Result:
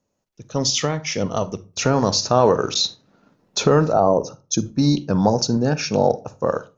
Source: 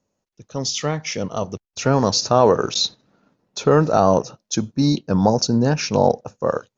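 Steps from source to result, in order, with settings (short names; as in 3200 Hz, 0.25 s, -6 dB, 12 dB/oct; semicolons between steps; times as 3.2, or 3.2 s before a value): 3.93–4.66 formant sharpening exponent 1.5; recorder AGC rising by 10 dB/s; 5.57–6.21 notch comb 1000 Hz; on a send: reverb RT60 0.30 s, pre-delay 33 ms, DRR 15 dB; on the sum: gain -1 dB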